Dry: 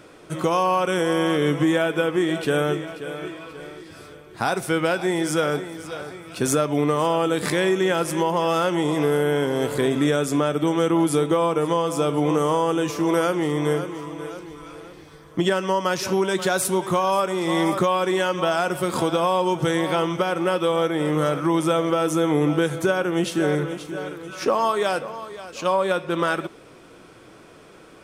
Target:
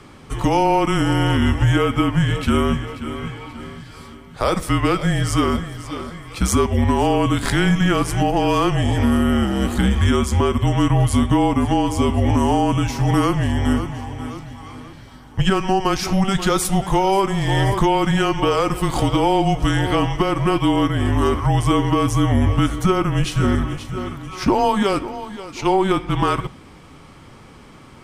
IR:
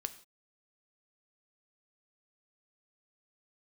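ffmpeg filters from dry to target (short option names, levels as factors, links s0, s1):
-filter_complex "[0:a]afreqshift=-200,asplit=2[s0][s1];[1:a]atrim=start_sample=2205,lowpass=8000[s2];[s1][s2]afir=irnorm=-1:irlink=0,volume=0.398[s3];[s0][s3]amix=inputs=2:normalize=0,volume=1.19"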